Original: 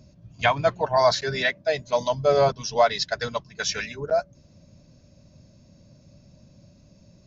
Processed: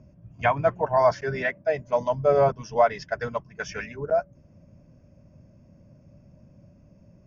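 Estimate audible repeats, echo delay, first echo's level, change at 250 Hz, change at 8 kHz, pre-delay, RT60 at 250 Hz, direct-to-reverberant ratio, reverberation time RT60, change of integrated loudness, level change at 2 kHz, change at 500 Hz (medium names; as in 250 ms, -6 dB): no echo, no echo, no echo, 0.0 dB, no reading, no reverb, no reverb, no reverb, no reverb, -1.0 dB, -3.0 dB, -0.5 dB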